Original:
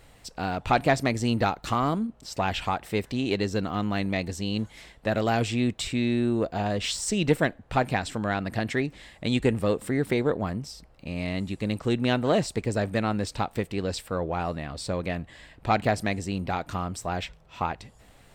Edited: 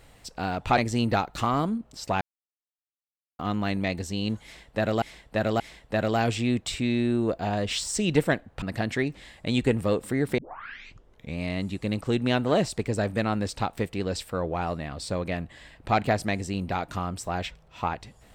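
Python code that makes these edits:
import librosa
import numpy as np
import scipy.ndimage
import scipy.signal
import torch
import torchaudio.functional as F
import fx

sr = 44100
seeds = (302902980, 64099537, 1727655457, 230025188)

y = fx.edit(x, sr, fx.cut(start_s=0.78, length_s=0.29),
    fx.silence(start_s=2.5, length_s=1.18),
    fx.repeat(start_s=4.73, length_s=0.58, count=3),
    fx.cut(start_s=7.75, length_s=0.65),
    fx.tape_start(start_s=10.16, length_s=1.0), tone=tone)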